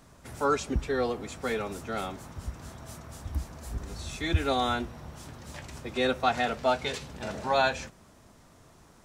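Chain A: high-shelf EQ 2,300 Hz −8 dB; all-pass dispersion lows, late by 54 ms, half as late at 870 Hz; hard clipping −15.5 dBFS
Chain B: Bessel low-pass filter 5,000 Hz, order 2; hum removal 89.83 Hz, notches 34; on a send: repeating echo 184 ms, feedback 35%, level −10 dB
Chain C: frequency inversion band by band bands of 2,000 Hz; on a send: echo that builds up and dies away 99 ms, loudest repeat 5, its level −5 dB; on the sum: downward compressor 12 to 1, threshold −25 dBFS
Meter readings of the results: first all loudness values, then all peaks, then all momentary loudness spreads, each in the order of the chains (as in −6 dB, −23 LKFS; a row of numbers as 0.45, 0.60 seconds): −31.5, −30.5, −28.5 LKFS; −15.5, −10.5, −17.0 dBFS; 18, 17, 2 LU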